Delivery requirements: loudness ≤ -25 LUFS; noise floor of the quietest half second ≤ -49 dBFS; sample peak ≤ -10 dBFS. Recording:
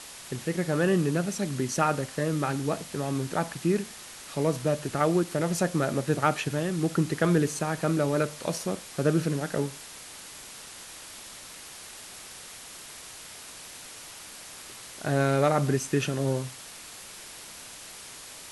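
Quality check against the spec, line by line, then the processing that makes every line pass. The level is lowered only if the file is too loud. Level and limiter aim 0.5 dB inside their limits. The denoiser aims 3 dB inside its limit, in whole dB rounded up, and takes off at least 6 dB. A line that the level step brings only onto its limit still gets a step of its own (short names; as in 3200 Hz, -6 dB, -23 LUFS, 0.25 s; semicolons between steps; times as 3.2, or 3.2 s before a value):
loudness -27.5 LUFS: OK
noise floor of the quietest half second -45 dBFS: fail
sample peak -8.5 dBFS: fail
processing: denoiser 7 dB, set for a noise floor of -45 dBFS; limiter -10.5 dBFS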